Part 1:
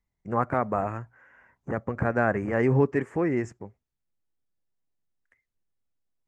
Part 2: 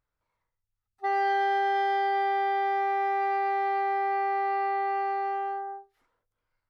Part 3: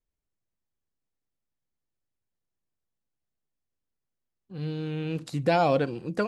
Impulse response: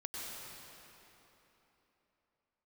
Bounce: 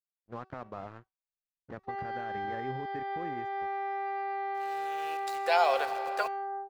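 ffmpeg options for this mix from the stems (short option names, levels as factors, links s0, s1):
-filter_complex "[0:a]alimiter=limit=0.188:level=0:latency=1,aeval=exprs='sgn(val(0))*max(abs(val(0))-0.01,0)':c=same,volume=0.266,asplit=2[s0][s1];[1:a]acompressor=threshold=0.02:ratio=12,adelay=850,volume=1.33[s2];[2:a]highpass=f=660:w=0.5412,highpass=f=660:w=1.3066,aeval=exprs='val(0)*gte(abs(val(0)),0.00562)':c=same,volume=0.944,asplit=2[s3][s4];[s4]volume=0.355[s5];[s1]apad=whole_len=276711[s6];[s3][s6]sidechaincompress=threshold=0.002:ratio=8:attack=16:release=1470[s7];[s0][s2]amix=inputs=2:normalize=0,lowpass=4700,alimiter=level_in=1.5:limit=0.0631:level=0:latency=1:release=197,volume=0.668,volume=1[s8];[3:a]atrim=start_sample=2205[s9];[s5][s9]afir=irnorm=-1:irlink=0[s10];[s7][s8][s10]amix=inputs=3:normalize=0,bandreject=f=379.3:t=h:w=4,bandreject=f=758.6:t=h:w=4,bandreject=f=1137.9:t=h:w=4,bandreject=f=1517.2:t=h:w=4,bandreject=f=1896.5:t=h:w=4,bandreject=f=2275.8:t=h:w=4,bandreject=f=2655.1:t=h:w=4,bandreject=f=3034.4:t=h:w=4,bandreject=f=3413.7:t=h:w=4,bandreject=f=3793:t=h:w=4,bandreject=f=4172.3:t=h:w=4,bandreject=f=4551.6:t=h:w=4,bandreject=f=4930.9:t=h:w=4,bandreject=f=5310.2:t=h:w=4,bandreject=f=5689.5:t=h:w=4,bandreject=f=6068.8:t=h:w=4,bandreject=f=6448.1:t=h:w=4,bandreject=f=6827.4:t=h:w=4,bandreject=f=7206.7:t=h:w=4,bandreject=f=7586:t=h:w=4,agate=range=0.0224:threshold=0.00562:ratio=3:detection=peak"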